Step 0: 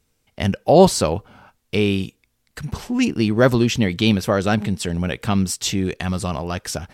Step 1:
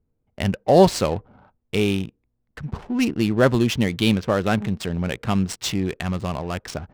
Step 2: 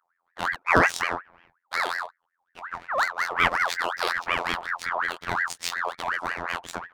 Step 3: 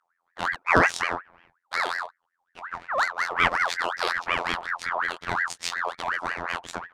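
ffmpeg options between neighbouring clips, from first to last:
ffmpeg -i in.wav -af "adynamicsmooth=sensitivity=5:basefreq=650,volume=-2dB" out.wav
ffmpeg -i in.wav -af "afftfilt=real='hypot(re,im)*cos(PI*b)':imag='0':win_size=2048:overlap=0.75,bandreject=frequency=50:width_type=h:width=6,bandreject=frequency=100:width_type=h:width=6,aeval=exprs='val(0)*sin(2*PI*1300*n/s+1300*0.4/5.5*sin(2*PI*5.5*n/s))':channel_layout=same,volume=1dB" out.wav
ffmpeg -i in.wav -af "lowpass=9900" out.wav

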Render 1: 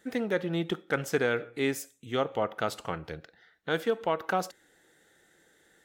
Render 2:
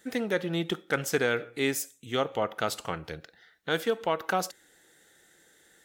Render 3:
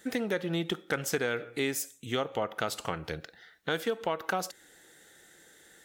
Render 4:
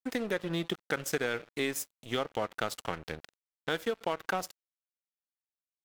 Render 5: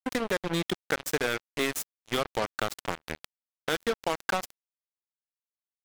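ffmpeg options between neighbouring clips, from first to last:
ffmpeg -i in.wav -af "highshelf=frequency=3000:gain=7.5" out.wav
ffmpeg -i in.wav -af "acompressor=threshold=-33dB:ratio=2.5,volume=3.5dB" out.wav
ffmpeg -i in.wav -af "aeval=exprs='sgn(val(0))*max(abs(val(0))-0.00794,0)':channel_layout=same" out.wav
ffmpeg -i in.wav -af "acrusher=bits=4:mix=0:aa=0.5,volume=3dB" out.wav

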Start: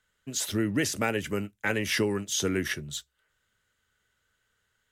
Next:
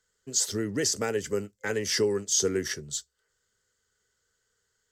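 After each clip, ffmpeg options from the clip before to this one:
ffmpeg -i in.wav -af "superequalizer=7b=2.51:12b=0.562:14b=3.16:15b=3.16,volume=-4dB" out.wav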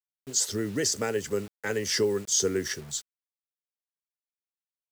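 ffmpeg -i in.wav -af "acrusher=bits=7:mix=0:aa=0.000001" out.wav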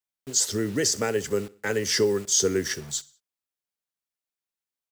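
ffmpeg -i in.wav -af "aecho=1:1:63|126|189:0.0794|0.0373|0.0175,volume=3dB" out.wav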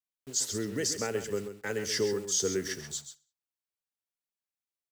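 ffmpeg -i in.wav -af "aecho=1:1:133:0.316,volume=-7dB" out.wav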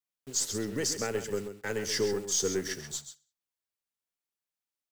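ffmpeg -i in.wav -af "aeval=exprs='0.141*(cos(1*acos(clip(val(0)/0.141,-1,1)))-cos(1*PI/2))+0.00316*(cos(6*acos(clip(val(0)/0.141,-1,1)))-cos(6*PI/2))+0.00708*(cos(8*acos(clip(val(0)/0.141,-1,1)))-cos(8*PI/2))':channel_layout=same" out.wav

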